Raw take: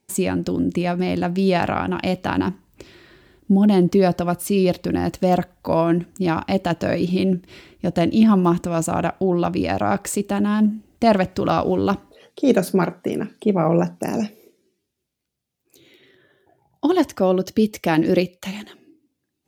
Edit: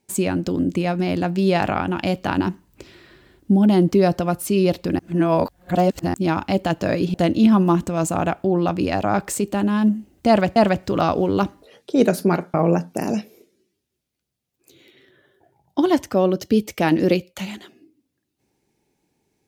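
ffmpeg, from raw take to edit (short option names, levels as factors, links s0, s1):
-filter_complex "[0:a]asplit=6[s0][s1][s2][s3][s4][s5];[s0]atrim=end=4.992[s6];[s1]atrim=start=4.988:end=6.142,asetpts=PTS-STARTPTS,areverse[s7];[s2]atrim=start=6.138:end=7.142[s8];[s3]atrim=start=7.908:end=11.332[s9];[s4]atrim=start=11.048:end=13.032[s10];[s5]atrim=start=13.598[s11];[s6][s7]acrossfade=d=0.004:c1=hsin:c2=hsin[s12];[s12][s8]acrossfade=d=0.004:c1=hsin:c2=hsin[s13];[s13][s9]acrossfade=d=0.004:c1=hsin:c2=hsin[s14];[s14][s10]acrossfade=d=0.004:c1=hsin:c2=hsin[s15];[s15][s11]acrossfade=d=0.004:c1=hsin:c2=hsin"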